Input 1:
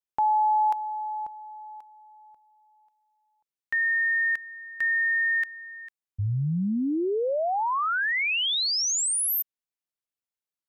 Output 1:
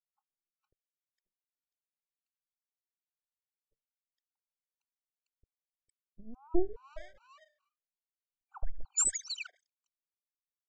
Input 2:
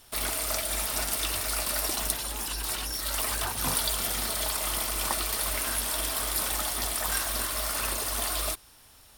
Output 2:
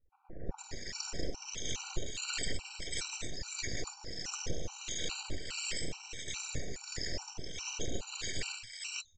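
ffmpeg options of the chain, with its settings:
-filter_complex "[0:a]afftfilt=real='re*pow(10,23/40*sin(2*PI*(1.4*log(max(b,1)*sr/1024/100)/log(2)-(-0.33)*(pts-256)/sr)))':imag='im*pow(10,23/40*sin(2*PI*(1.4*log(max(b,1)*sr/1024/100)/log(2)-(-0.33)*(pts-256)/sr)))':win_size=1024:overlap=0.75,bandreject=f=50:t=h:w=6,bandreject=f=100:t=h:w=6,bandreject=f=150:t=h:w=6,bandreject=f=200:t=h:w=6,bandreject=f=250:t=h:w=6,bandreject=f=300:t=h:w=6,bandreject=f=350:t=h:w=6,afftdn=nr=28:nf=-38,highpass=f=200:p=1,afftfilt=real='re*(1-between(b*sr/4096,330,3400))':imag='im*(1-between(b*sr/4096,330,3400))':win_size=4096:overlap=0.75,highshelf=f=5.5k:g=4.5,aecho=1:1:2.2:0.83,acompressor=threshold=-20dB:ratio=12:attack=0.37:release=101:knee=1:detection=peak,tremolo=f=1.5:d=0.71,aresample=16000,aeval=exprs='abs(val(0))':c=same,aresample=44100,acrossover=split=1100[a][b];[b]adelay=460[c];[a][c]amix=inputs=2:normalize=0,afftfilt=real='re*gt(sin(2*PI*2.4*pts/sr)*(1-2*mod(floor(b*sr/1024/770),2)),0)':imag='im*gt(sin(2*PI*2.4*pts/sr)*(1-2*mod(floor(b*sr/1024/770),2)),0)':win_size=1024:overlap=0.75,volume=4.5dB"

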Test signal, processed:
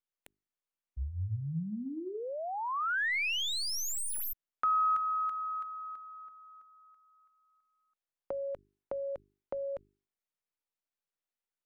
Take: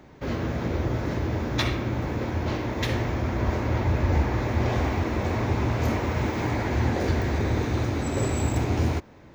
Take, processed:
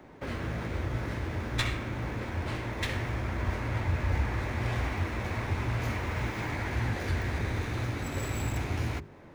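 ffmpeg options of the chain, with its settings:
-filter_complex "[0:a]highshelf=f=9k:g=-2.5,bandreject=f=50:t=h:w=6,bandreject=f=100:t=h:w=6,bandreject=f=150:t=h:w=6,bandreject=f=200:t=h:w=6,bandreject=f=250:t=h:w=6,bandreject=f=300:t=h:w=6,bandreject=f=350:t=h:w=6,bandreject=f=400:t=h:w=6,acrossover=split=150|1300|2900[a][b][c][d];[a]flanger=delay=18.5:depth=2.1:speed=1.9[e];[b]acompressor=threshold=-38dB:ratio=5[f];[d]aeval=exprs='max(val(0),0)':c=same[g];[e][f][c][g]amix=inputs=4:normalize=0"

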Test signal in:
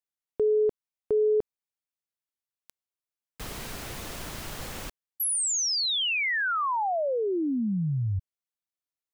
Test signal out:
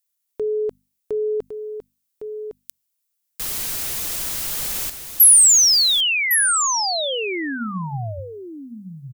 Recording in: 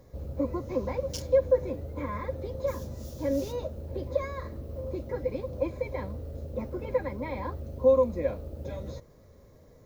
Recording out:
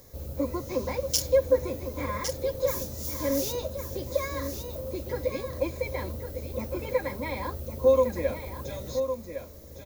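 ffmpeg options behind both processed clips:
-af "bandreject=f=50:t=h:w=6,bandreject=f=100:t=h:w=6,bandreject=f=150:t=h:w=6,bandreject=f=200:t=h:w=6,bandreject=f=250:t=h:w=6,crystalizer=i=5:c=0,aecho=1:1:1108:0.376"

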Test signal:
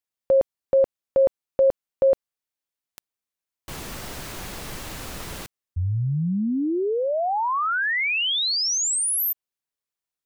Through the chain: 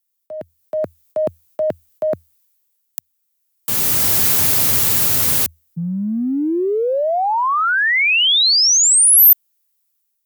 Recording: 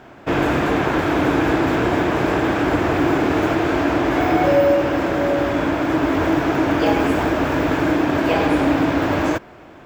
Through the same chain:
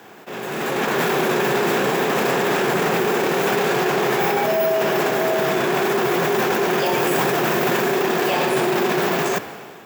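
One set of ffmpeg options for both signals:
-af "afreqshift=81,areverse,acompressor=threshold=-28dB:ratio=16:attack=2.1:release=58:knee=1:detection=rms,areverse,aemphasis=mode=production:type=75fm,dynaudnorm=f=260:g=5:m=14dB,volume=-1dB"

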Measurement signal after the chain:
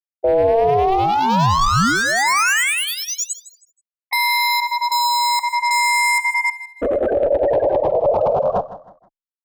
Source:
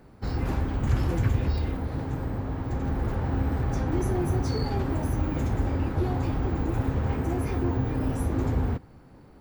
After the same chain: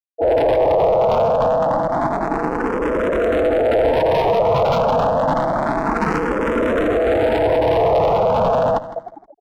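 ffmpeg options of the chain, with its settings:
-filter_complex "[0:a]lowpass=f=1.7k:p=1,aemphasis=mode=reproduction:type=75kf,acrossover=split=650[a][b];[a]aeval=exprs='val(0)*(1-0.7/2+0.7/2*cos(2*PI*9.8*n/s))':c=same[c];[b]aeval=exprs='val(0)*(1-0.7/2-0.7/2*cos(2*PI*9.8*n/s))':c=same[d];[c][d]amix=inputs=2:normalize=0,adynamicequalizer=threshold=0.00708:dfrequency=200:dqfactor=0.73:tfrequency=200:tqfactor=0.73:attack=5:release=100:ratio=0.375:range=1.5:mode=cutabove:tftype=bell,asplit=2[e][f];[f]acompressor=threshold=-43dB:ratio=8,volume=-2.5dB[g];[e][g]amix=inputs=2:normalize=0,apsyclip=27dB,afftfilt=real='re*gte(hypot(re,im),0.891)':imag='im*gte(hypot(re,im),0.891)':win_size=1024:overlap=0.75,volume=18.5dB,asoftclip=hard,volume=-18.5dB,aeval=exprs='val(0)*sin(2*PI*570*n/s)':c=same,asplit=2[h][i];[i]aecho=0:1:159|318|477:0.188|0.064|0.0218[j];[h][j]amix=inputs=2:normalize=0,asplit=2[k][l];[l]afreqshift=0.28[m];[k][m]amix=inputs=2:normalize=1,volume=8dB"

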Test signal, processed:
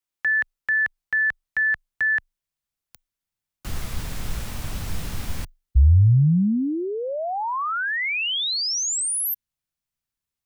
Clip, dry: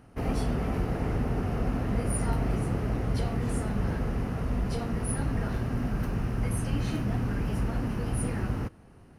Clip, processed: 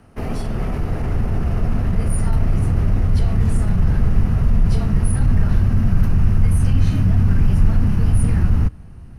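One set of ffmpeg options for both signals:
-af "alimiter=limit=-22.5dB:level=0:latency=1:release=22,afreqshift=-23,asubboost=boost=4.5:cutoff=180,volume=5.5dB"

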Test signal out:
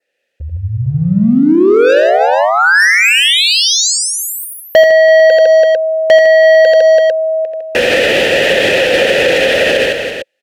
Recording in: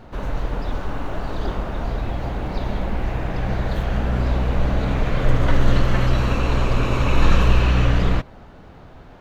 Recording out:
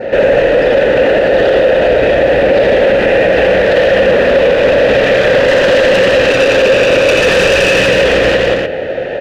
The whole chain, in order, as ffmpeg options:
-filter_complex "[0:a]adynamicequalizer=threshold=0.00501:dfrequency=3200:dqfactor=2.9:tfrequency=3200:tqfactor=2.9:attack=5:release=100:ratio=0.375:range=2.5:mode=boostabove:tftype=bell,asplit=3[a][b][c];[a]bandpass=f=530:t=q:w=8,volume=0dB[d];[b]bandpass=f=1.84k:t=q:w=8,volume=-6dB[e];[c]bandpass=f=2.48k:t=q:w=8,volume=-9dB[f];[d][e][f]amix=inputs=3:normalize=0,asplit=2[g][h];[h]aeval=exprs='sgn(val(0))*max(abs(val(0))-0.00266,0)':c=same,volume=-12dB[i];[g][i]amix=inputs=2:normalize=0,acontrast=82,asoftclip=type=tanh:threshold=-29.5dB,asplit=2[j][k];[k]aecho=0:1:69|85|155|333|449:0.1|0.631|0.531|0.282|0.251[l];[j][l]amix=inputs=2:normalize=0,alimiter=level_in=31.5dB:limit=-1dB:release=50:level=0:latency=1,volume=-1.5dB"

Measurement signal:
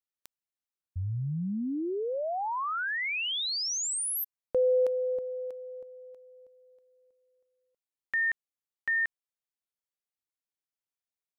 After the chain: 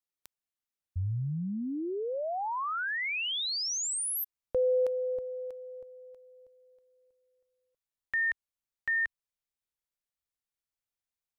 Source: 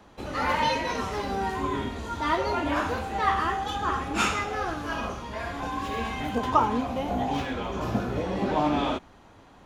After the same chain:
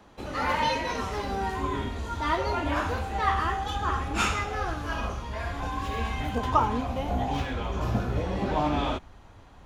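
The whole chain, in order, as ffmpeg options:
-af "asubboost=boost=3:cutoff=120,volume=-1dB"

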